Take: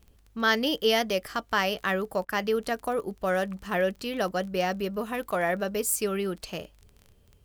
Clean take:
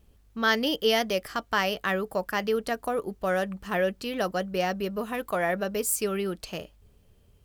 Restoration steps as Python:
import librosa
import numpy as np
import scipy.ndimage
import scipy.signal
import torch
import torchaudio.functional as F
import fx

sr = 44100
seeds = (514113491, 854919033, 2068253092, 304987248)

y = fx.fix_declick_ar(x, sr, threshold=6.5)
y = fx.fix_interpolate(y, sr, at_s=(2.25,), length_ms=39.0)